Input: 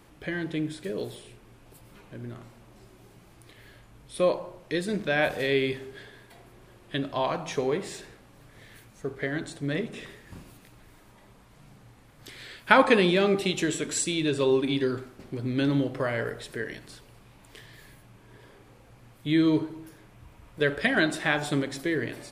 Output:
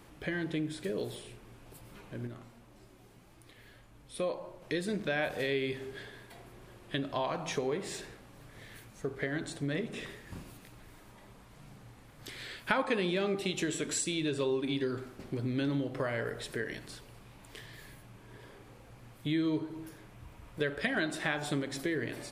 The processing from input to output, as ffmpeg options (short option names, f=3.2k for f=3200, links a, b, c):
-filter_complex "[0:a]asettb=1/sr,asplit=3[a][b][c];[a]atrim=end=2.274[d];[b]atrim=start=2.27:end=4.62,asetpts=PTS-STARTPTS,afade=t=in:d=0.004:c=qsin,afade=t=out:st=2.346:d=0.004:c=qsin,flanger=delay=3.1:depth=1.3:regen=74:speed=1.8:shape=triangular[e];[c]atrim=start=4.616[f];[d][e]acrossfade=d=0.004:c1=hsin:c2=qsin[g];[g][f]acrossfade=d=0.004:c1=qsin:c2=hsin,acompressor=threshold=-32dB:ratio=2.5"